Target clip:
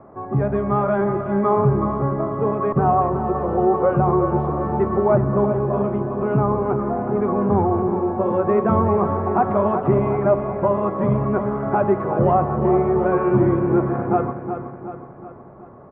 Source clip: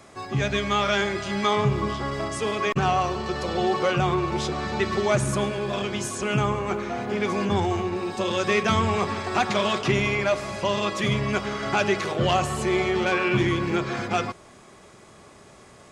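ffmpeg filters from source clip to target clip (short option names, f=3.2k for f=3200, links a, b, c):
-af "lowpass=f=1.1k:w=0.5412,lowpass=f=1.1k:w=1.3066,equalizer=f=67:t=o:w=1.2:g=-3.5,aecho=1:1:370|740|1110|1480|1850|2220:0.355|0.185|0.0959|0.0499|0.0259|0.0135,volume=6dB"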